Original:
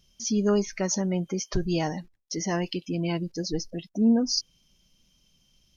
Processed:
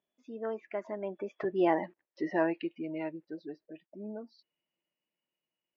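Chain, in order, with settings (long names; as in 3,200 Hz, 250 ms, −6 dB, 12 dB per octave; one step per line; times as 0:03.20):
source passing by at 0:01.96, 28 m/s, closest 10 metres
loudspeaker in its box 340–2,500 Hz, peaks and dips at 340 Hz +9 dB, 620 Hz +8 dB, 940 Hz +5 dB, 1,800 Hz +5 dB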